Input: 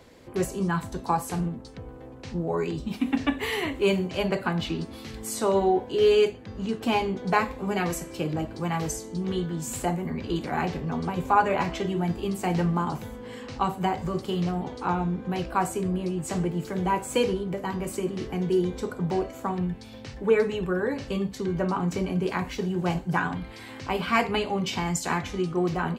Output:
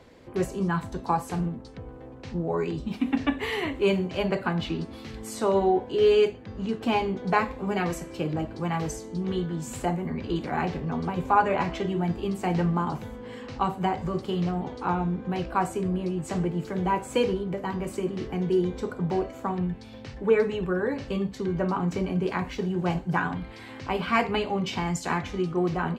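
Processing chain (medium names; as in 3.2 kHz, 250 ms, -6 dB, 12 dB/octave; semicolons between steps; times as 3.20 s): low-pass 4 kHz 6 dB/octave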